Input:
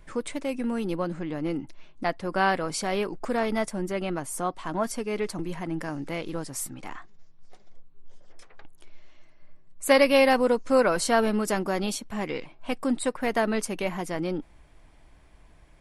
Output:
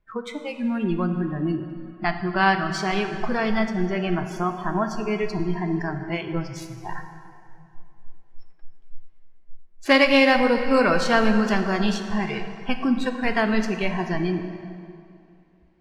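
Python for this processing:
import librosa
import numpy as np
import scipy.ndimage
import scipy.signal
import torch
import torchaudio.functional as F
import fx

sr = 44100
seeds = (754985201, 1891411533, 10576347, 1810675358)

y = scipy.ndimage.median_filter(x, 5, mode='constant')
y = fx.dynamic_eq(y, sr, hz=560.0, q=0.75, threshold_db=-36.0, ratio=4.0, max_db=-8)
y = fx.echo_diffused(y, sr, ms=651, feedback_pct=64, wet_db=-15.5)
y = fx.noise_reduce_blind(y, sr, reduce_db=27)
y = fx.air_absorb(y, sr, metres=78.0)
y = fx.rev_plate(y, sr, seeds[0], rt60_s=2.5, hf_ratio=0.7, predelay_ms=0, drr_db=6.5)
y = y * librosa.db_to_amplitude(8.0)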